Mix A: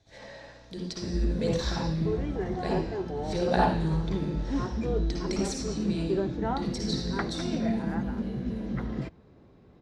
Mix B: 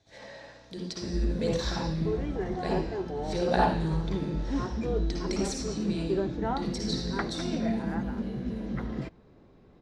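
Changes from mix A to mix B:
background: remove HPF 68 Hz; master: add low shelf 78 Hz -9.5 dB

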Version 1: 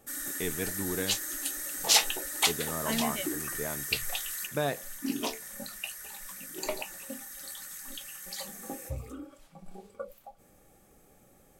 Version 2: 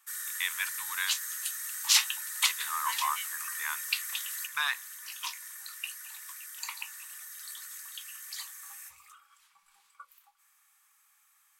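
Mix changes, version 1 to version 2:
first voice +9.0 dB; master: add elliptic high-pass 1000 Hz, stop band 40 dB

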